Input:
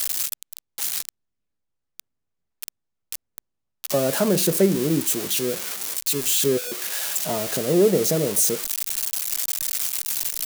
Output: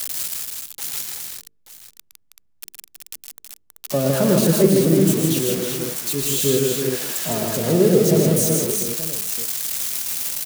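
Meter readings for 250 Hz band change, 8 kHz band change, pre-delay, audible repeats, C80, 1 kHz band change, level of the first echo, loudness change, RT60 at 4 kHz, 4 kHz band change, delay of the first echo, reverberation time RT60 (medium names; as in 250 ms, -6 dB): +5.5 dB, +1.0 dB, no reverb, 5, no reverb, +2.0 dB, -7.0 dB, +2.5 dB, no reverb, +1.0 dB, 113 ms, no reverb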